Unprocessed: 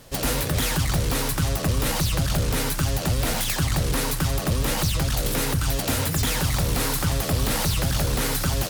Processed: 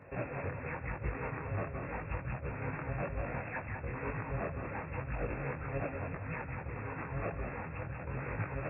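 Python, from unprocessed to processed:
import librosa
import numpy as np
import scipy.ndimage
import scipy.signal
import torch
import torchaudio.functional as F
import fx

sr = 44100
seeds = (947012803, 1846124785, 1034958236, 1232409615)

y = scipy.signal.sosfilt(scipy.signal.butter(4, 66.0, 'highpass', fs=sr, output='sos'), x)
y = fx.peak_eq(y, sr, hz=220.0, db=-3.5, octaves=0.85)
y = fx.over_compress(y, sr, threshold_db=-29.0, ratio=-0.5)
y = fx.brickwall_lowpass(y, sr, high_hz=2700.0)
y = fx.echo_feedback(y, sr, ms=192, feedback_pct=38, wet_db=-5.5)
y = fx.detune_double(y, sr, cents=33)
y = y * librosa.db_to_amplitude(-4.5)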